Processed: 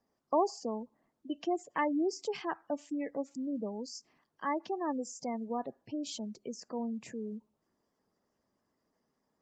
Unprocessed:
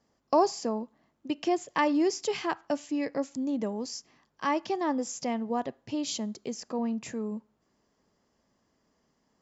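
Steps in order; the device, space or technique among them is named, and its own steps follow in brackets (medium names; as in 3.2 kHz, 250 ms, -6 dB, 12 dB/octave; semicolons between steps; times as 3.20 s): noise-suppressed video call (high-pass 120 Hz 6 dB/octave; spectral gate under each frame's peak -20 dB strong; trim -5 dB; Opus 32 kbps 48 kHz)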